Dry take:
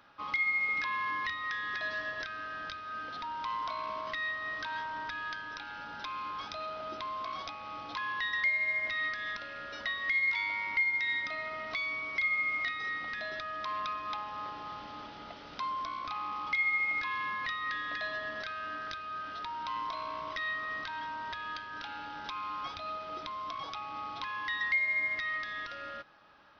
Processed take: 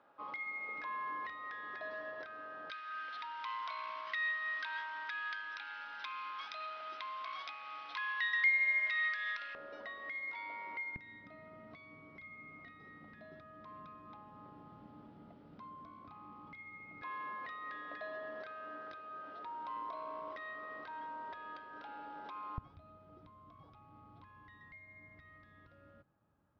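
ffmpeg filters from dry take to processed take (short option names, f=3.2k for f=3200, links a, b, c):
-af "asetnsamples=n=441:p=0,asendcmd='2.7 bandpass f 2100;9.55 bandpass f 500;10.96 bandpass f 170;17.02 bandpass f 490;22.58 bandpass f 100',bandpass=f=540:t=q:w=1.1:csg=0"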